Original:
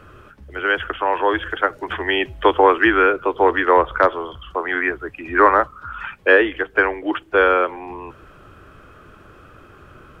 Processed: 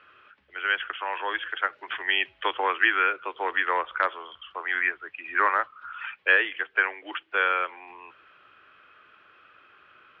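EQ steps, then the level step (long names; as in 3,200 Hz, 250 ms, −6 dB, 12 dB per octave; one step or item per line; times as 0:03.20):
resonant band-pass 2,700 Hz, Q 1.2
high-frequency loss of the air 340 metres
high-shelf EQ 3,200 Hz +9.5 dB
0.0 dB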